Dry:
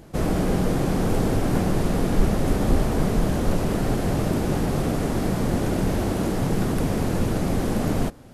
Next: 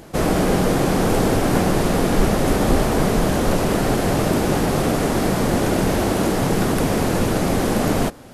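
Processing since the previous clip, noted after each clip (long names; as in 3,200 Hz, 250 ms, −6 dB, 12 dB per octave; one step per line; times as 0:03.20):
low-shelf EQ 250 Hz −8.5 dB
level +8.5 dB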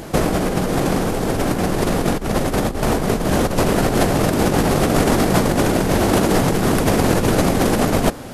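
compressor whose output falls as the input rises −21 dBFS, ratio −0.5
level +5 dB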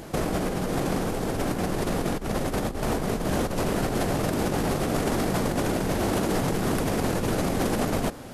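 brickwall limiter −8 dBFS, peak gain reduction 5.5 dB
level −7.5 dB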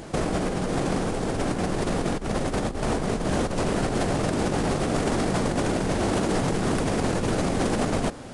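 downsampling to 22,050 Hz
level +1 dB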